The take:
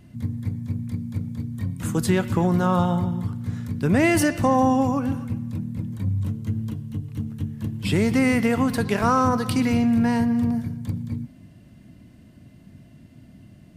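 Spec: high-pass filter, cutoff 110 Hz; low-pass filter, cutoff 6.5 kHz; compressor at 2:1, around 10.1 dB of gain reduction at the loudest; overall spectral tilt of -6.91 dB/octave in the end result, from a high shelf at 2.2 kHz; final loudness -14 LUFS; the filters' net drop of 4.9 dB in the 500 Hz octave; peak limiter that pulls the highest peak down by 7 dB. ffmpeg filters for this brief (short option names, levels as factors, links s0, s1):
-af "highpass=110,lowpass=6500,equalizer=f=500:t=o:g=-5.5,highshelf=f=2200:g=-9,acompressor=threshold=0.0141:ratio=2,volume=12.6,alimiter=limit=0.631:level=0:latency=1"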